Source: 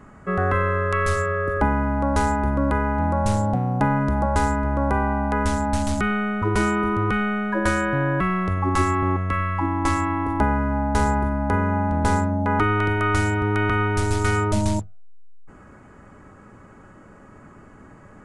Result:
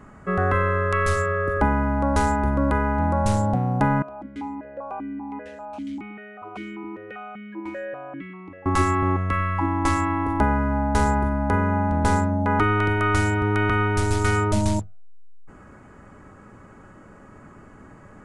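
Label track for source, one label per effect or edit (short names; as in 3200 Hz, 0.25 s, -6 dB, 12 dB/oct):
4.020000	8.660000	vowel sequencer 5.1 Hz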